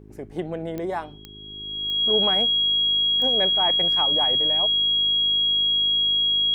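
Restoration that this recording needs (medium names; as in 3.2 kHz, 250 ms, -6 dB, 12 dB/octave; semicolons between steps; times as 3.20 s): de-click; de-hum 51.9 Hz, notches 8; band-stop 3.3 kHz, Q 30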